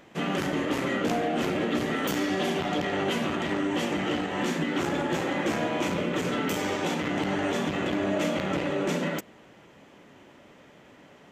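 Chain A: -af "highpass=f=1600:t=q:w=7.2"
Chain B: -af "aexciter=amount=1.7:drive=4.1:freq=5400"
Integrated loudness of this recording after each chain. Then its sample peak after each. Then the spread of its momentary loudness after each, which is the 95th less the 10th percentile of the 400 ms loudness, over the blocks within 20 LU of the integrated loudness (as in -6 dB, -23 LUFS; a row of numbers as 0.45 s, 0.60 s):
-24.5 LUFS, -28.0 LUFS; -9.0 dBFS, -15.5 dBFS; 3 LU, 2 LU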